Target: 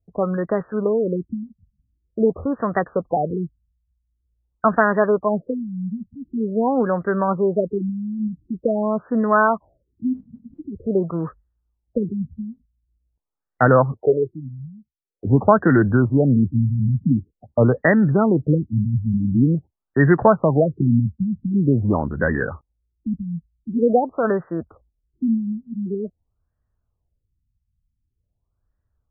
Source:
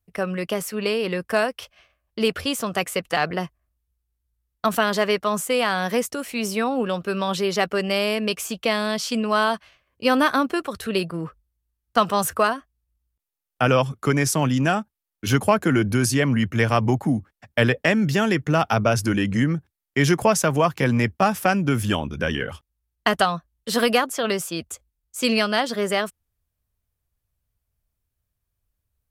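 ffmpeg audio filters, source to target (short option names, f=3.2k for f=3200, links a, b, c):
-filter_complex "[0:a]asettb=1/sr,asplit=3[a][b][c];[a]atrim=end=13.974[d];[b]atrim=start=13.97:end=15.25,asetpts=PTS-STARTPTS,afade=t=in:d=0.004:c=qsin,afade=t=out:st=1.276:d=0.004:c=qsin,lowshelf=f=330:t=q:w=3:g=-11.5[e];[c]atrim=start=15.246[f];[d][e]acrossfade=d=0.004:c1=hsin:c2=qsin[g];[g][f]acrossfade=d=0.004:c1=qsin:c2=hsin,afftfilt=real='re*lt(b*sr/1024,220*pow(2000/220,0.5+0.5*sin(2*PI*0.46*pts/sr)))':imag='im*lt(b*sr/1024,220*pow(2000/220,0.5+0.5*sin(2*PI*0.46*pts/sr)))':win_size=1024:overlap=0.75,volume=4.5dB"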